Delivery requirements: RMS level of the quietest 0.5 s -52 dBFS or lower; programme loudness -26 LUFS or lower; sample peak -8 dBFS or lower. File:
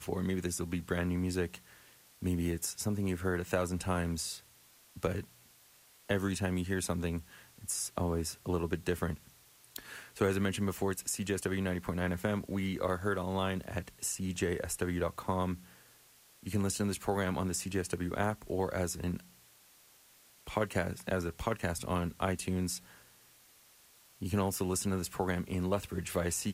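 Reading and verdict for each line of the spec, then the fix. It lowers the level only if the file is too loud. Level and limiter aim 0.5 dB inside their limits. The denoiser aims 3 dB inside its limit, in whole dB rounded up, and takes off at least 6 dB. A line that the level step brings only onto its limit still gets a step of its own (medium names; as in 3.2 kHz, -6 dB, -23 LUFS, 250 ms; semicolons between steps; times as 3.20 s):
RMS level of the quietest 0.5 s -62 dBFS: pass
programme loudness -34.5 LUFS: pass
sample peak -17.0 dBFS: pass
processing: none needed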